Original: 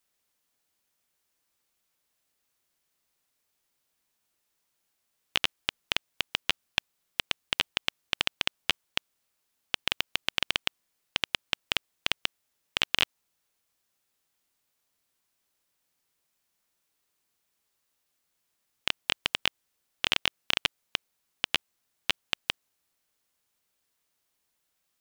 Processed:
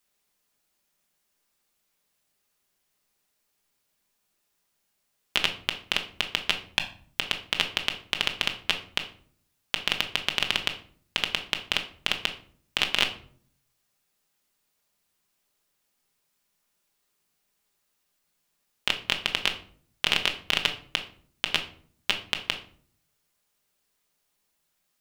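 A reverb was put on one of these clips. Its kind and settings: simulated room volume 580 m³, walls furnished, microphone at 1.3 m; trim +1.5 dB

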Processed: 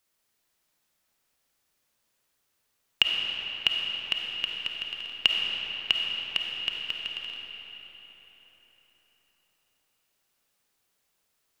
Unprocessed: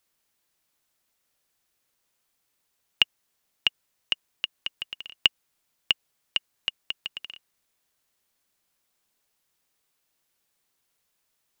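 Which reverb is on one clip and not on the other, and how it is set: algorithmic reverb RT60 4.5 s, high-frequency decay 0.7×, pre-delay 10 ms, DRR -0.5 dB; trim -1.5 dB

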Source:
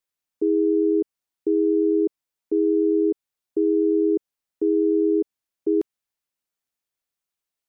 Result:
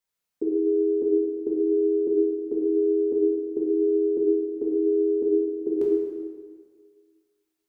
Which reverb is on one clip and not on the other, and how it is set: plate-style reverb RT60 1.7 s, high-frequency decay 0.8×, DRR -4 dB; trim -2 dB

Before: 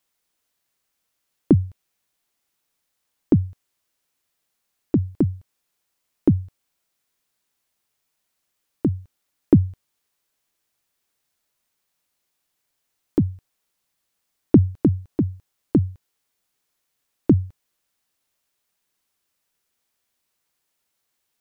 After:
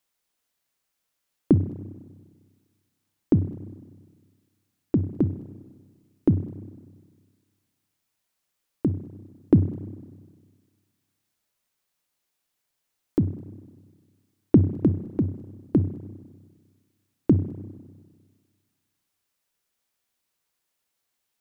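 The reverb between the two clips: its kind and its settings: spring tank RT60 1.6 s, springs 31/50 ms, chirp 20 ms, DRR 11 dB; trim -3 dB

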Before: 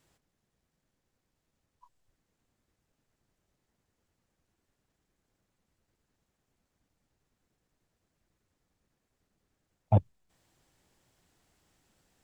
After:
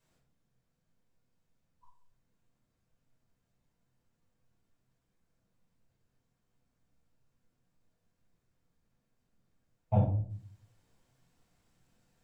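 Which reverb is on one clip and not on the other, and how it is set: simulated room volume 510 m³, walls furnished, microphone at 5.2 m; trim -11 dB

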